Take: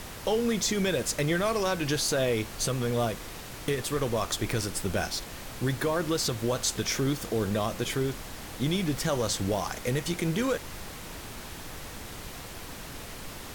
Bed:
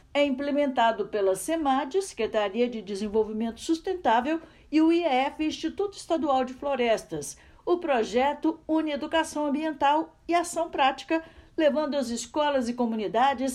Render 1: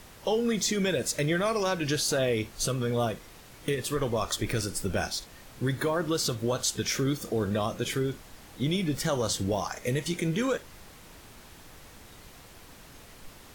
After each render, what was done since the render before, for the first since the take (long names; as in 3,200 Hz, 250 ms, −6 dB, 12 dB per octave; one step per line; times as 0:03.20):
noise reduction from a noise print 9 dB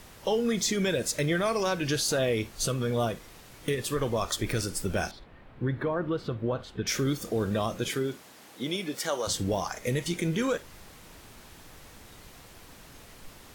0:05.11–0:06.87: high-frequency loss of the air 500 metres
0:07.88–0:09.26: high-pass filter 140 Hz → 460 Hz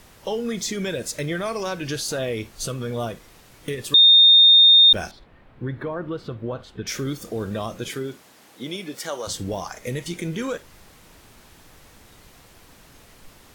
0:03.94–0:04.93: beep over 3,660 Hz −8.5 dBFS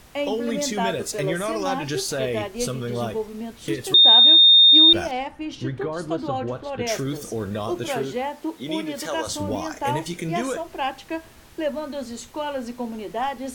mix in bed −3.5 dB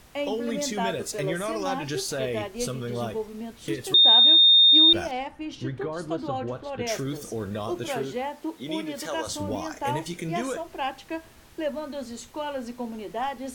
level −3.5 dB